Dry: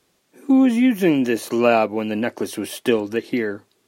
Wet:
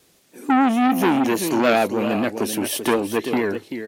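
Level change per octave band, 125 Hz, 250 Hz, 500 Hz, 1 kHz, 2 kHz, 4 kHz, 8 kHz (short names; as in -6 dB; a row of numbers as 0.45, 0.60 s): -0.5, -1.5, -1.0, +5.0, +1.5, +3.0, +6.5 dB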